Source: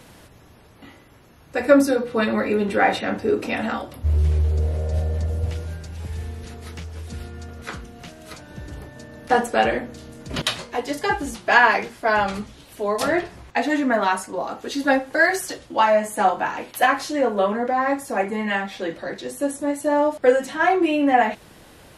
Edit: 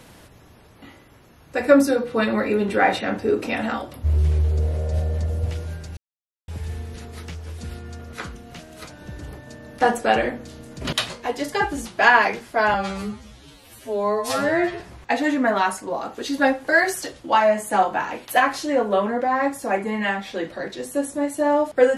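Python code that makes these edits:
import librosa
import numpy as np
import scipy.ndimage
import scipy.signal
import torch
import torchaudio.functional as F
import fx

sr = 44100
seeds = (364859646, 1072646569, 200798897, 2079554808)

y = fx.edit(x, sr, fx.insert_silence(at_s=5.97, length_s=0.51),
    fx.stretch_span(start_s=12.23, length_s=1.03, factor=2.0), tone=tone)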